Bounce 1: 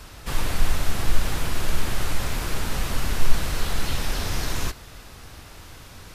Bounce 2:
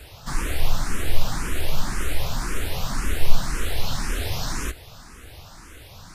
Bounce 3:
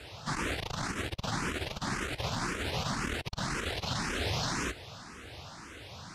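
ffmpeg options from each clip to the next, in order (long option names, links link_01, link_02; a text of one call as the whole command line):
ffmpeg -i in.wav -filter_complex "[0:a]asplit=2[link_01][link_02];[link_02]afreqshift=1.9[link_03];[link_01][link_03]amix=inputs=2:normalize=1,volume=2.5dB" out.wav
ffmpeg -i in.wav -af "asoftclip=type=tanh:threshold=-16dB,highpass=100,lowpass=6300" out.wav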